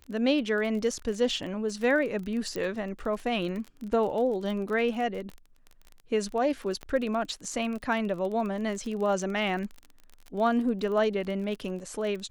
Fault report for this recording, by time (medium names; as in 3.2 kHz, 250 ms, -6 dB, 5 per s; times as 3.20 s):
crackle 29 per s -34 dBFS
2.56 s: pop -20 dBFS
6.83 s: pop -25 dBFS